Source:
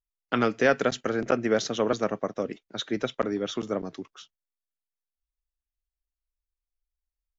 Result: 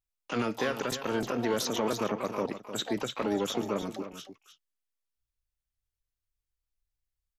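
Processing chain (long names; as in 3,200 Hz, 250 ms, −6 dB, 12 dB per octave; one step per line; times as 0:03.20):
parametric band 790 Hz −4 dB 0.72 octaves
brickwall limiter −20.5 dBFS, peak gain reduction 11 dB
pitch-shifted copies added +12 semitones −7 dB
tape wow and flutter 25 cents
single-tap delay 305 ms −11 dB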